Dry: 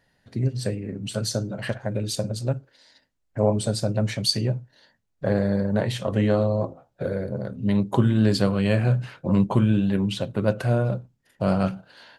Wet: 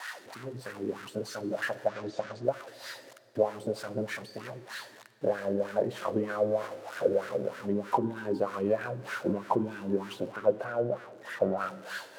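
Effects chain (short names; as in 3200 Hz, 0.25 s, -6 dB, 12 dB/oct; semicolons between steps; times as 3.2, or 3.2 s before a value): switching spikes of -16.5 dBFS; 1.88–2.44 LPF 6600 Hz 24 dB/oct; 10.32–11.58 high shelf 3300 Hz -10.5 dB; compressor, threshold -21 dBFS, peak gain reduction 8.5 dB; wah 3.2 Hz 330–1500 Hz, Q 4; reverb RT60 3.1 s, pre-delay 43 ms, DRR 18.5 dB; gain +8 dB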